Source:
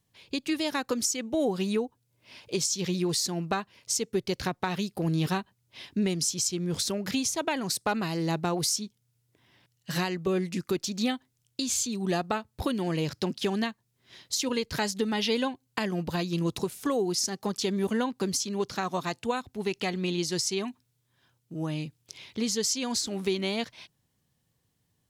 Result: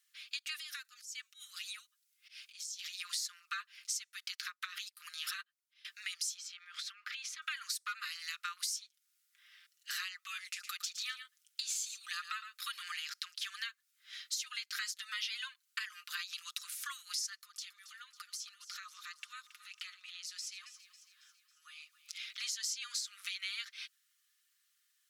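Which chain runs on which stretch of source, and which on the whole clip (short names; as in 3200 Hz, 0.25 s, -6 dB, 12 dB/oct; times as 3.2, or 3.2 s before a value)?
0.58–3 passive tone stack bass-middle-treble 10-0-10 + compressor 16:1, threshold -40 dBFS + auto swell 0.131 s
4.29–5.85 transient shaper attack +2 dB, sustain +11 dB + upward expander 2.5:1, over -41 dBFS
6.37–7.42 three-band isolator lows -23 dB, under 310 Hz, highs -18 dB, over 3700 Hz + compressor 10:1, threshold -38 dBFS
10.44–12.97 echo 0.111 s -12.5 dB + hard clip -17 dBFS
17.39–22.2 notch 1600 Hz, Q 29 + compressor 5:1, threshold -43 dBFS + echo with dull and thin repeats by turns 0.137 s, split 950 Hz, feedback 73%, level -12 dB
whole clip: steep high-pass 1200 Hz 96 dB/oct; comb 5.7 ms, depth 54%; compressor 3:1, threshold -42 dBFS; gain +2.5 dB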